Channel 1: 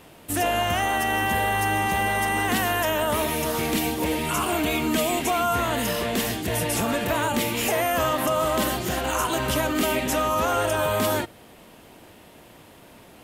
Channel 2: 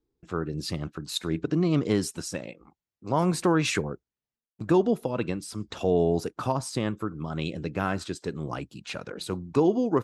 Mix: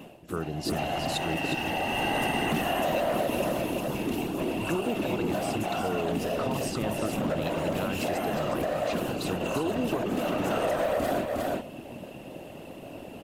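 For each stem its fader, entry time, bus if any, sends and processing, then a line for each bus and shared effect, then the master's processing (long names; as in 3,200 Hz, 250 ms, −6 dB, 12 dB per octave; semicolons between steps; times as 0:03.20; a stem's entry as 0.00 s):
−4.0 dB, 0.00 s, no send, echo send −9 dB, hollow resonant body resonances 260/570/2,700 Hz, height 17 dB, ringing for 35 ms; gain into a clipping stage and back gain 12.5 dB; random phases in short frames; automatic ducking −22 dB, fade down 0.40 s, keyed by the second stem
−1.5 dB, 0.00 s, muted 0:01.55–0:03.88, no send, echo send −7.5 dB, brickwall limiter −18 dBFS, peak gain reduction 7.5 dB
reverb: not used
echo: single-tap delay 360 ms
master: downward compressor 6 to 1, threshold −24 dBFS, peak gain reduction 9.5 dB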